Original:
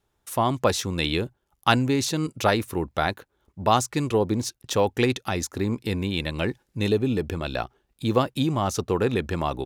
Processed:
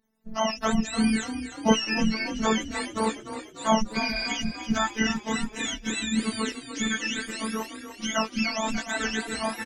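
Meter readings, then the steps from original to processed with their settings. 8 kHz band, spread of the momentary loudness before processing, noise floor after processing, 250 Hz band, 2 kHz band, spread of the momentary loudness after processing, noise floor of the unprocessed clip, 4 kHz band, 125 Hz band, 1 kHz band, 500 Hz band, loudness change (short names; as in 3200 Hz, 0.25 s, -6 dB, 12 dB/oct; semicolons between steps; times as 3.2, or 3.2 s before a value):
+1.0 dB, 7 LU, -46 dBFS, 0.0 dB, +2.5 dB, 7 LU, -74 dBFS, +0.5 dB, -11.5 dB, -3.0 dB, -6.5 dB, -2.0 dB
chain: spectrum mirrored in octaves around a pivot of 840 Hz; robotiser 221 Hz; spectral repair 4.04–4.25, 810–10000 Hz before; on a send: frequency-shifting echo 0.295 s, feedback 57%, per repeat +31 Hz, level -11 dB; on the sum: gain +1.5 dB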